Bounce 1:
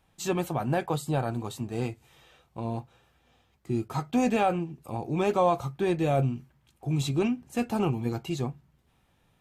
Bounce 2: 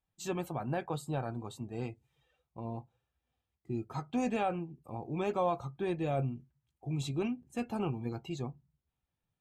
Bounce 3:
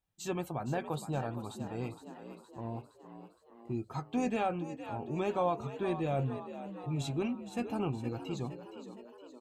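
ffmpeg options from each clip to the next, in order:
ffmpeg -i in.wav -af "afftdn=noise_reduction=15:noise_floor=-50,volume=-7.5dB" out.wav
ffmpeg -i in.wav -filter_complex "[0:a]asplit=7[link_01][link_02][link_03][link_04][link_05][link_06][link_07];[link_02]adelay=466,afreqshift=61,volume=-11.5dB[link_08];[link_03]adelay=932,afreqshift=122,volume=-16.5dB[link_09];[link_04]adelay=1398,afreqshift=183,volume=-21.6dB[link_10];[link_05]adelay=1864,afreqshift=244,volume=-26.6dB[link_11];[link_06]adelay=2330,afreqshift=305,volume=-31.6dB[link_12];[link_07]adelay=2796,afreqshift=366,volume=-36.7dB[link_13];[link_01][link_08][link_09][link_10][link_11][link_12][link_13]amix=inputs=7:normalize=0" out.wav

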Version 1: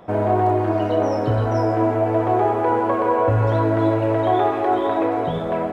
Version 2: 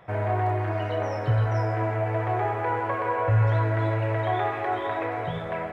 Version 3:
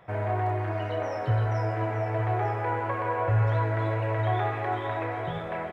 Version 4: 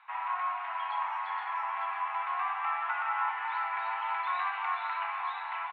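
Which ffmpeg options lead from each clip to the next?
ffmpeg -i in.wav -af "equalizer=frequency=125:width_type=o:width=1:gain=10,equalizer=frequency=250:width_type=o:width=1:gain=-11,equalizer=frequency=2000:width_type=o:width=1:gain=11,volume=-8dB" out.wav
ffmpeg -i in.wav -af "aecho=1:1:904:0.266,volume=-2.5dB" out.wav
ffmpeg -i in.wav -af "highpass=frequency=430:width_type=q:width=0.5412,highpass=frequency=430:width_type=q:width=1.307,lowpass=frequency=3600:width_type=q:width=0.5176,lowpass=frequency=3600:width_type=q:width=0.7071,lowpass=frequency=3600:width_type=q:width=1.932,afreqshift=350,aecho=1:1:555:0.335,volume=-2.5dB" out.wav

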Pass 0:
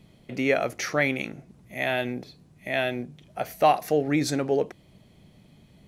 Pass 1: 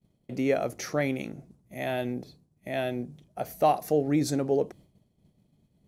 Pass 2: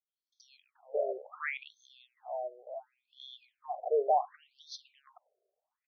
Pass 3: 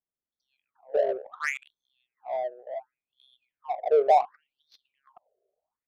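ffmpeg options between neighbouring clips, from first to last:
ffmpeg -i in.wav -af "agate=range=-33dB:threshold=-45dB:ratio=3:detection=peak,equalizer=frequency=2200:width_type=o:width=2.3:gain=-10" out.wav
ffmpeg -i in.wav -filter_complex "[0:a]acrossover=split=610|4600[link_01][link_02][link_03];[link_03]adelay=30[link_04];[link_02]adelay=460[link_05];[link_01][link_05][link_04]amix=inputs=3:normalize=0,afftfilt=real='re*between(b*sr/1024,500*pow(4600/500,0.5+0.5*sin(2*PI*0.69*pts/sr))/1.41,500*pow(4600/500,0.5+0.5*sin(2*PI*0.69*pts/sr))*1.41)':imag='im*between(b*sr/1024,500*pow(4600/500,0.5+0.5*sin(2*PI*0.69*pts/sr))/1.41,500*pow(4600/500,0.5+0.5*sin(2*PI*0.69*pts/sr))*1.41)':win_size=1024:overlap=0.75" out.wav
ffmpeg -i in.wav -af "adynamicsmooth=sensitivity=5.5:basefreq=870,volume=7.5dB" out.wav

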